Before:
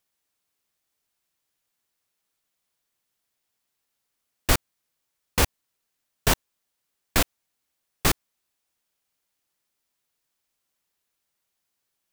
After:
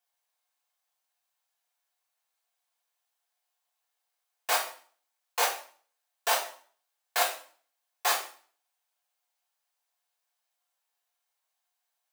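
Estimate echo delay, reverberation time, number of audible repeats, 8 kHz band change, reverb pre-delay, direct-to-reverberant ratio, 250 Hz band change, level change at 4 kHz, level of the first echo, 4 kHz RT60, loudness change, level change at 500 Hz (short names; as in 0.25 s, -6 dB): none, 0.45 s, none, -3.5 dB, 3 ms, -4.0 dB, -26.5 dB, -3.0 dB, none, 0.45 s, -3.5 dB, -3.5 dB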